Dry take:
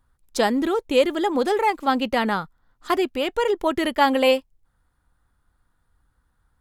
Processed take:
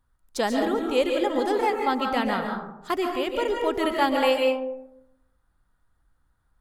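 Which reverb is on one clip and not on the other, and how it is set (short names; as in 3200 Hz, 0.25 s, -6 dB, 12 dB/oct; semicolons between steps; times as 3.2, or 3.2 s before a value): digital reverb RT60 0.9 s, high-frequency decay 0.35×, pre-delay 0.1 s, DRR 2 dB; gain -5 dB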